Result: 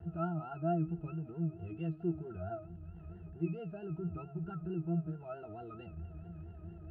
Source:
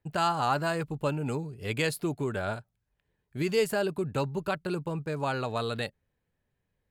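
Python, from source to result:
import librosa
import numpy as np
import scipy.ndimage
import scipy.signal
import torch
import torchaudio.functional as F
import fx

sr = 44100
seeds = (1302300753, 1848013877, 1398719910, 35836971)

y = x + 0.5 * 10.0 ** (-31.0 / 20.0) * np.sign(x)
y = fx.spacing_loss(y, sr, db_at_10k=40)
y = fx.octave_resonator(y, sr, note='E', decay_s=0.2)
y = y + 10.0 ** (-21.5 / 20.0) * np.pad(y, (int(76 * sr / 1000.0), 0))[:len(y)]
y = fx.vibrato(y, sr, rate_hz=4.5, depth_cents=89.0)
y = F.gain(torch.from_numpy(y), 1.0).numpy()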